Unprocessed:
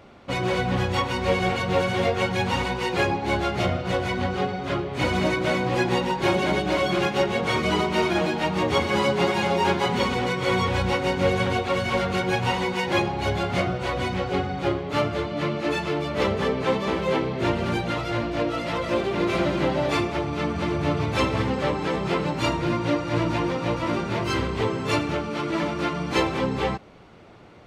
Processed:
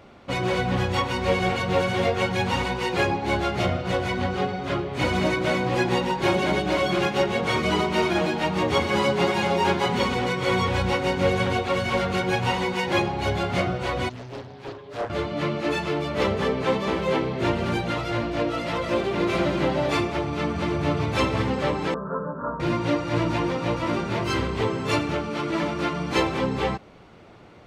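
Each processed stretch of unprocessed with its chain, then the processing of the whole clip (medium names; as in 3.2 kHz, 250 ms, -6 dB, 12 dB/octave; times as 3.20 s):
14.09–15.10 s: inharmonic resonator 120 Hz, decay 0.3 s, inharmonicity 0.03 + loudspeaker Doppler distortion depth 0.81 ms
21.94–22.60 s: steep low-pass 1.6 kHz 96 dB/octave + bass shelf 230 Hz -6 dB + static phaser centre 510 Hz, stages 8
whole clip: none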